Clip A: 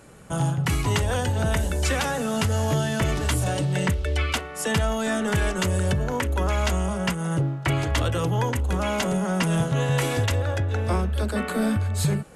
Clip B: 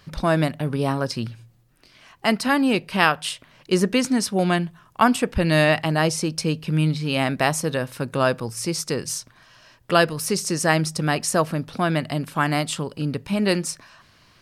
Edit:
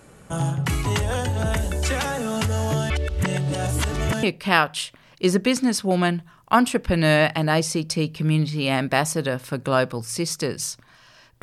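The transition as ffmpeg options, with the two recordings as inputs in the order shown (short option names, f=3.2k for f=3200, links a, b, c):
-filter_complex "[0:a]apad=whole_dur=11.42,atrim=end=11.42,asplit=2[a][b];[a]atrim=end=2.902[c];[b]atrim=start=2.898:end=4.232,asetpts=PTS-STARTPTS,areverse[d];[1:a]atrim=start=2.708:end=9.9[e];[c][d]acrossfade=d=0.004:c1=hsin:c2=hsin[f];[f][e]acrossfade=d=0.004:c1=hsin:c2=hsin"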